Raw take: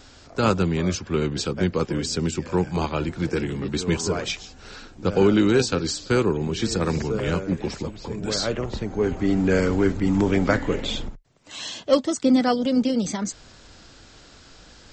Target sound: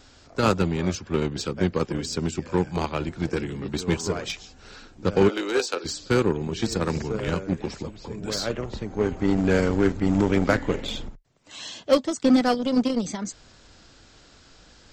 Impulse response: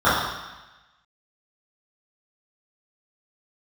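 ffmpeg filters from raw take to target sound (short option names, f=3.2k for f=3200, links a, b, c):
-filter_complex "[0:a]asplit=3[a][b][c];[a]afade=t=out:st=5.28:d=0.02[d];[b]highpass=f=380:w=0.5412,highpass=f=380:w=1.3066,afade=t=in:st=5.28:d=0.02,afade=t=out:st=5.84:d=0.02[e];[c]afade=t=in:st=5.84:d=0.02[f];[d][e][f]amix=inputs=3:normalize=0,asplit=2[g][h];[h]acrusher=bits=2:mix=0:aa=0.5,volume=-6dB[i];[g][i]amix=inputs=2:normalize=0,volume=-4dB"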